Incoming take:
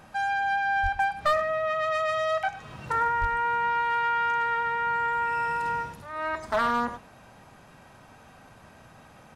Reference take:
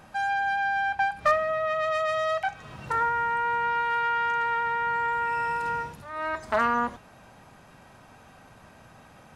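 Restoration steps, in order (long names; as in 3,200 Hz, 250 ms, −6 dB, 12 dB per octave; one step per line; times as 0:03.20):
clipped peaks rebuilt −16.5 dBFS
0:00.82–0:00.94: high-pass filter 140 Hz 24 dB per octave
0:03.20–0:03.32: high-pass filter 140 Hz 24 dB per octave
echo removal 101 ms −15 dB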